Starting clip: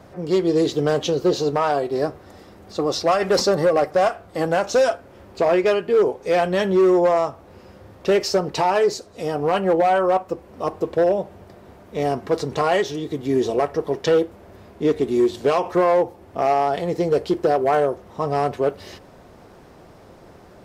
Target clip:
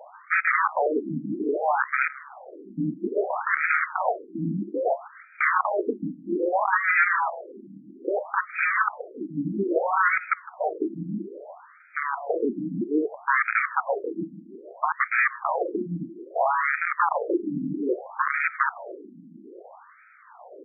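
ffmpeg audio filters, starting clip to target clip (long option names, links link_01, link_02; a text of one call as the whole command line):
ffmpeg -i in.wav -af "aeval=exprs='(mod(7.08*val(0)+1,2)-1)/7.08':channel_layout=same,aecho=1:1:158|316|474:0.126|0.0504|0.0201,afftfilt=real='re*between(b*sr/1024,220*pow(1800/220,0.5+0.5*sin(2*PI*0.61*pts/sr))/1.41,220*pow(1800/220,0.5+0.5*sin(2*PI*0.61*pts/sr))*1.41)':imag='im*between(b*sr/1024,220*pow(1800/220,0.5+0.5*sin(2*PI*0.61*pts/sr))/1.41,220*pow(1800/220,0.5+0.5*sin(2*PI*0.61*pts/sr))*1.41)':win_size=1024:overlap=0.75,volume=6.5dB" out.wav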